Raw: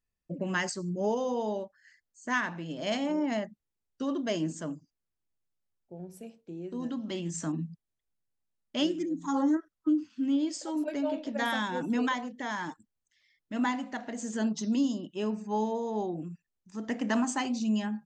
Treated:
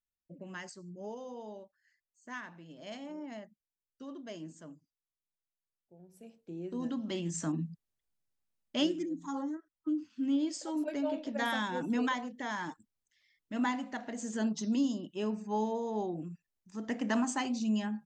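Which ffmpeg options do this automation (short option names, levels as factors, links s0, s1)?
-af "volume=3.16,afade=t=in:st=6.09:d=0.48:silence=0.237137,afade=t=out:st=8.78:d=0.78:silence=0.237137,afade=t=in:st=9.56:d=0.74:silence=0.281838"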